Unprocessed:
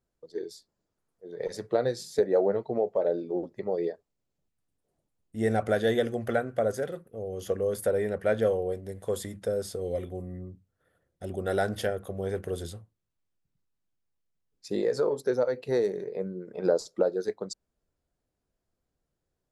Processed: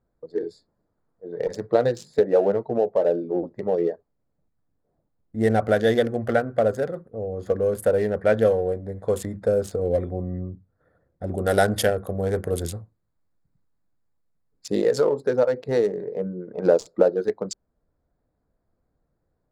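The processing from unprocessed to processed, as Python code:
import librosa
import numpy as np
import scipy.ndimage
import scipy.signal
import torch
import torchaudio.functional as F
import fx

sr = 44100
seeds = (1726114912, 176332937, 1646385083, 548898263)

y = fx.high_shelf(x, sr, hz=5700.0, db=10.0, at=(11.34, 15.06))
y = fx.wiener(y, sr, points=15)
y = fx.rider(y, sr, range_db=3, speed_s=2.0)
y = fx.notch(y, sr, hz=380.0, q=12.0)
y = y * 10.0 ** (6.5 / 20.0)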